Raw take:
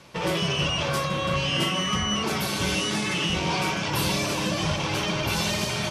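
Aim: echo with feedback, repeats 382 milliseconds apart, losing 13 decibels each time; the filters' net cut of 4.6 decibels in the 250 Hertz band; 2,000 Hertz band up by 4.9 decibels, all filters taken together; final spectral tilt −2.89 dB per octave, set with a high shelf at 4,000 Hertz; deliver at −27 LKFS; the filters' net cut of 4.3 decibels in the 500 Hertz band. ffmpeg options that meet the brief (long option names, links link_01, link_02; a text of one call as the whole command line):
ffmpeg -i in.wav -af "equalizer=frequency=250:width_type=o:gain=-6.5,equalizer=frequency=500:width_type=o:gain=-4,equalizer=frequency=2000:width_type=o:gain=8,highshelf=frequency=4000:gain=-4,aecho=1:1:382|764|1146:0.224|0.0493|0.0108,volume=-3.5dB" out.wav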